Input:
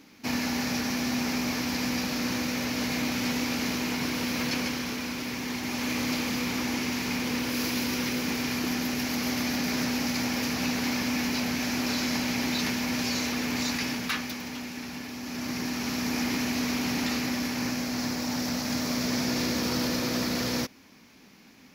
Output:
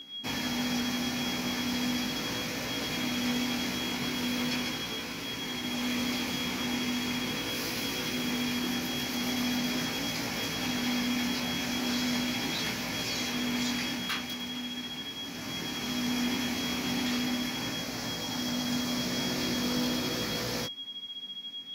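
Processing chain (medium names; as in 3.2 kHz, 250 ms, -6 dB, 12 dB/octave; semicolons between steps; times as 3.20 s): whistle 3.3 kHz -35 dBFS; chorus 0.39 Hz, delay 18 ms, depth 3.8 ms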